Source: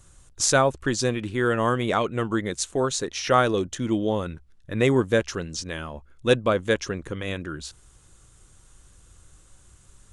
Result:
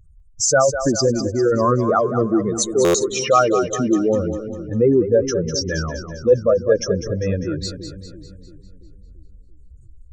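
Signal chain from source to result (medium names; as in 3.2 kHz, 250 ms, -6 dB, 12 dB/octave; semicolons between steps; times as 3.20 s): spectral contrast enhancement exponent 2.9; in parallel at +1 dB: gain riding within 5 dB 0.5 s; on the sum: two-band feedback delay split 360 Hz, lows 338 ms, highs 200 ms, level -9.5 dB; buffer glitch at 2.84 s, samples 512, times 8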